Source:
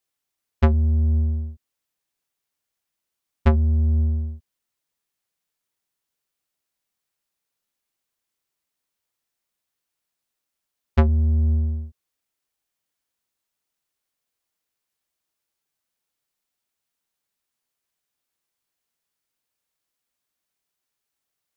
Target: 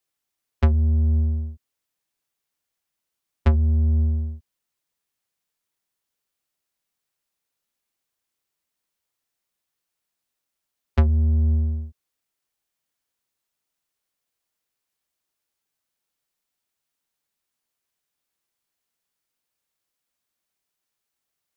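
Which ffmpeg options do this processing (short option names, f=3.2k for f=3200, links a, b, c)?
-filter_complex "[0:a]acrossover=split=160[a][b];[b]acompressor=threshold=-25dB:ratio=4[c];[a][c]amix=inputs=2:normalize=0"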